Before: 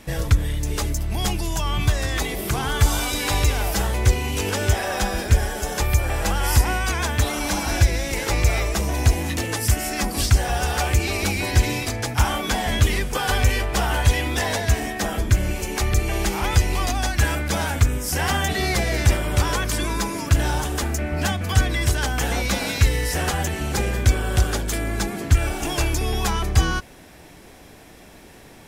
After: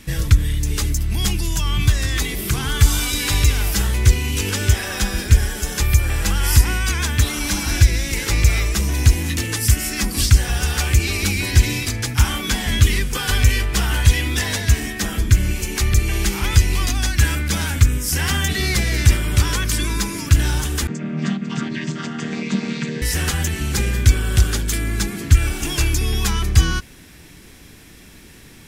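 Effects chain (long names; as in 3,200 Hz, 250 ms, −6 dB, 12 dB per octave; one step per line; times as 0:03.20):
0:20.87–0:23.02: channel vocoder with a chord as carrier major triad, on D#3
parametric band 680 Hz −14 dB 1.4 octaves
level +4.5 dB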